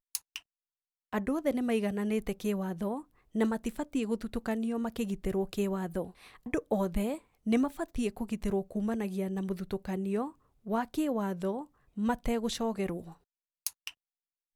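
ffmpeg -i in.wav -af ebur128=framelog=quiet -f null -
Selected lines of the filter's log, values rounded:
Integrated loudness:
  I:         -33.4 LUFS
  Threshold: -43.7 LUFS
Loudness range:
  LRA:         1.5 LU
  Threshold: -53.6 LUFS
  LRA low:   -34.3 LUFS
  LRA high:  -32.8 LUFS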